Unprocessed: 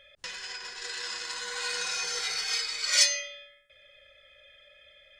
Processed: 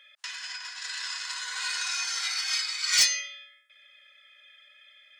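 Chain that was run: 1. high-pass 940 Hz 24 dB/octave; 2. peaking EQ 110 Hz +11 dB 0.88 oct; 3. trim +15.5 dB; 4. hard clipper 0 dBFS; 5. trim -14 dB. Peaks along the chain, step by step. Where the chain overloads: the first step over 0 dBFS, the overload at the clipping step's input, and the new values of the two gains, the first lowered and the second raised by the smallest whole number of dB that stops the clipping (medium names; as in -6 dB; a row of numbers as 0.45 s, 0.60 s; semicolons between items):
-7.5 dBFS, -7.5 dBFS, +8.0 dBFS, 0.0 dBFS, -14.0 dBFS; step 3, 8.0 dB; step 3 +7.5 dB, step 5 -6 dB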